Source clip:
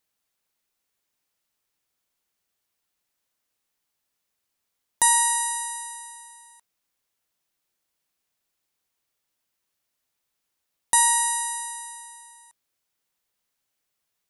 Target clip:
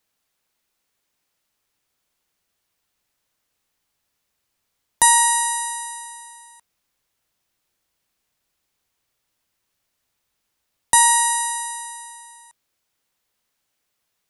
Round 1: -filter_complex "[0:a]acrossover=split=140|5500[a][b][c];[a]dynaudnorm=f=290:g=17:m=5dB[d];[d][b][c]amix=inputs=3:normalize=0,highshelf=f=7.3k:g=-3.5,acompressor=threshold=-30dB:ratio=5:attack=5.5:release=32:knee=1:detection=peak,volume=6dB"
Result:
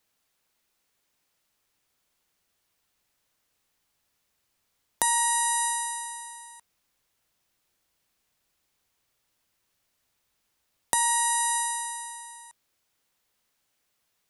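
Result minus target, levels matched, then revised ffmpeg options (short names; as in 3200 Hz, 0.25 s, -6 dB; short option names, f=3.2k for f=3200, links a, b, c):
compressor: peak gain reduction +11.5 dB
-filter_complex "[0:a]acrossover=split=140|5500[a][b][c];[a]dynaudnorm=f=290:g=17:m=5dB[d];[d][b][c]amix=inputs=3:normalize=0,highshelf=f=7.3k:g=-3.5,volume=6dB"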